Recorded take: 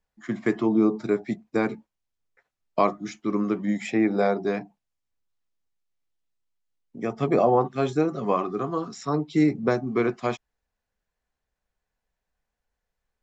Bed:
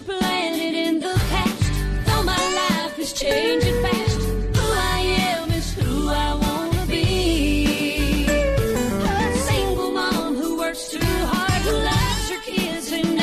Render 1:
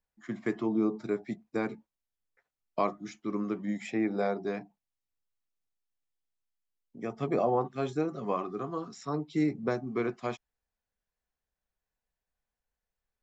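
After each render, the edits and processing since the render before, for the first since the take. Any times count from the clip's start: trim -7.5 dB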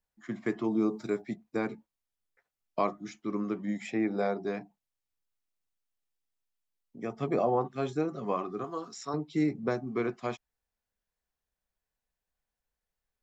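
0.64–1.22 s: treble shelf 4.3 kHz +10 dB; 8.64–9.14 s: tone controls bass -10 dB, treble +6 dB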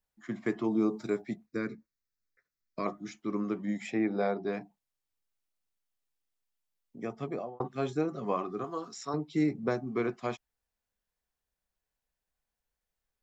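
1.46–2.86 s: static phaser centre 3 kHz, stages 6; 3.99–4.53 s: steep low-pass 5.1 kHz; 7.01–7.60 s: fade out linear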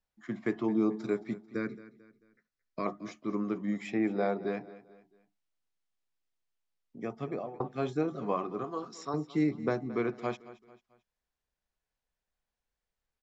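distance through air 58 m; feedback delay 221 ms, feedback 41%, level -17.5 dB

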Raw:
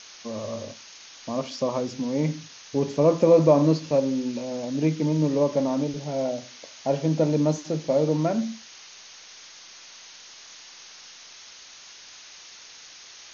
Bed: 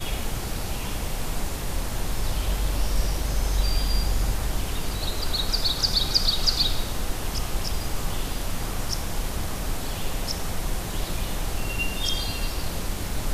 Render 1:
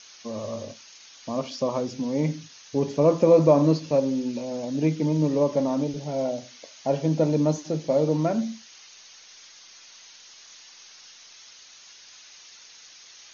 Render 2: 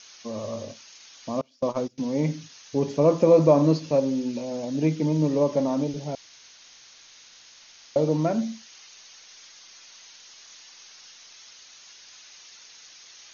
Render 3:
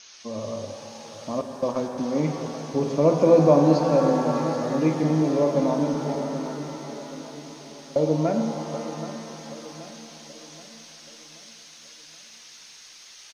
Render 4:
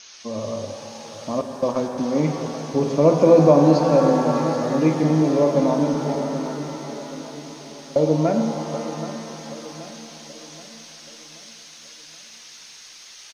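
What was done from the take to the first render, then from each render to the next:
noise reduction 6 dB, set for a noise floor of -47 dBFS
1.41–1.98 s: gate -29 dBFS, range -24 dB; 6.15–7.96 s: room tone
feedback delay 778 ms, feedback 46%, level -13 dB; pitch-shifted reverb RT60 3.8 s, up +7 st, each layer -8 dB, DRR 5 dB
trim +3.5 dB; peak limiter -3 dBFS, peak gain reduction 2 dB

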